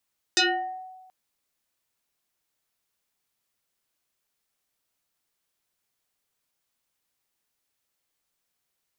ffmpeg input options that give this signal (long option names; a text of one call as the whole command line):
ffmpeg -f lavfi -i "aevalsrc='0.158*pow(10,-3*t/1.25)*sin(2*PI*747*t+6.1*pow(10,-3*t/0.57)*sin(2*PI*1.47*747*t))':duration=0.73:sample_rate=44100" out.wav